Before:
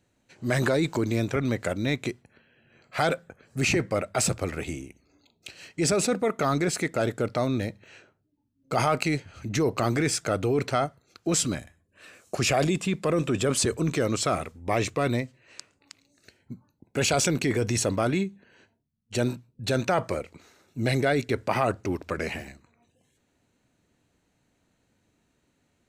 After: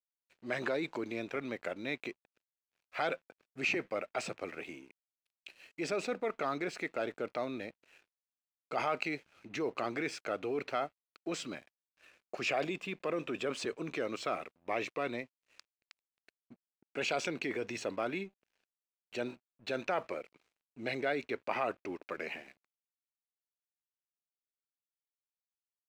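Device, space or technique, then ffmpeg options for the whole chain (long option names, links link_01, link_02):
pocket radio on a weak battery: -af "highpass=300,lowpass=3900,aeval=exprs='sgn(val(0))*max(abs(val(0))-0.00188,0)':channel_layout=same,equalizer=frequency=2500:width_type=o:width=0.43:gain=5,volume=-8.5dB"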